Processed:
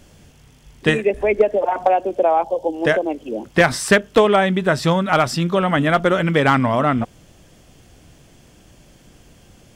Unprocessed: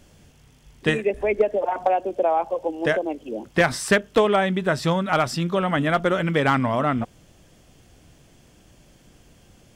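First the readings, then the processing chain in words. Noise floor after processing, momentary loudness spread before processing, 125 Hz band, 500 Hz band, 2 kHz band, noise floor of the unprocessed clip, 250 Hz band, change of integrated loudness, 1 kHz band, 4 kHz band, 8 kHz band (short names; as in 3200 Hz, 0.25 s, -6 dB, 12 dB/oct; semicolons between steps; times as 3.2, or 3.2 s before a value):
-50 dBFS, 7 LU, +4.5 dB, +4.5 dB, +4.5 dB, -54 dBFS, +4.5 dB, +4.5 dB, +4.5 dB, +4.5 dB, +4.5 dB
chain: spectral gain 2.43–2.75, 970–2900 Hz -9 dB; gain +4.5 dB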